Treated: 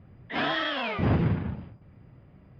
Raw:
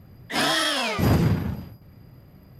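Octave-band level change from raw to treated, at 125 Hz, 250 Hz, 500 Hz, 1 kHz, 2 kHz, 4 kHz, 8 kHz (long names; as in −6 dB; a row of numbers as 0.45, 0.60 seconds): −4.0 dB, −4.0 dB, −4.0 dB, −4.0 dB, −4.0 dB, −8.5 dB, below −30 dB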